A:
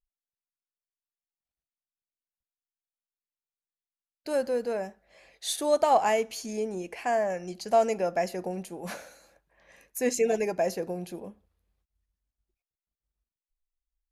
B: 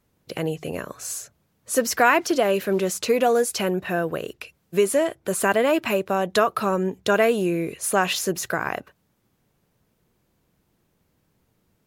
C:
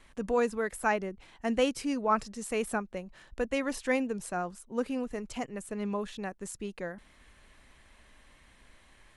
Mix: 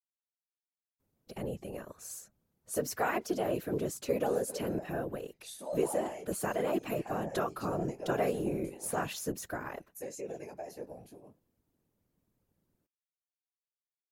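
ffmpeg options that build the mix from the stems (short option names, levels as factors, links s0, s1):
-filter_complex "[0:a]agate=range=0.0224:threshold=0.00224:ratio=3:detection=peak,lowshelf=f=190:g=-10.5,volume=1[s0];[1:a]adelay=1000,volume=0.668[s1];[s0]flanger=delay=18:depth=4.2:speed=0.19,alimiter=level_in=1.12:limit=0.0631:level=0:latency=1:release=91,volume=0.891,volume=1[s2];[s1][s2]amix=inputs=2:normalize=0,equalizer=f=2600:w=0.37:g=-7.5,afftfilt=real='hypot(re,im)*cos(2*PI*random(0))':imag='hypot(re,im)*sin(2*PI*random(1))':win_size=512:overlap=0.75"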